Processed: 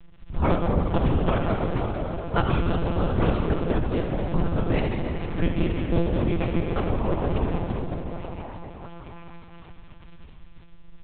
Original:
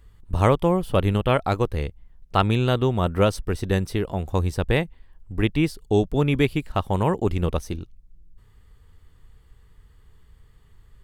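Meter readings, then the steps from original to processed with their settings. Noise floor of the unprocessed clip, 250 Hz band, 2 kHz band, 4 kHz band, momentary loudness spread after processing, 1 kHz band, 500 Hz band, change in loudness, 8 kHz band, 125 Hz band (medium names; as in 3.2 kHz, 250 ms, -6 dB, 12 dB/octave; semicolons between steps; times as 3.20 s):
-55 dBFS, -1.0 dB, -4.0 dB, -6.5 dB, 14 LU, -3.0 dB, -3.5 dB, -3.0 dB, under -35 dB, -2.0 dB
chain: cycle switcher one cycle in 2, muted; tilt EQ -1.5 dB/octave; in parallel at +1.5 dB: compression 6:1, threshold -32 dBFS, peak gain reduction 19 dB; on the sum: crackle 40 per s -30 dBFS; wow and flutter 110 cents; on a send: repeats whose band climbs or falls 691 ms, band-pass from 530 Hz, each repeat 0.7 oct, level -8.5 dB; on the sum: plate-style reverb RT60 4.1 s, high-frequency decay 0.95×, DRR 0.5 dB; monotone LPC vocoder at 8 kHz 170 Hz; trim -6 dB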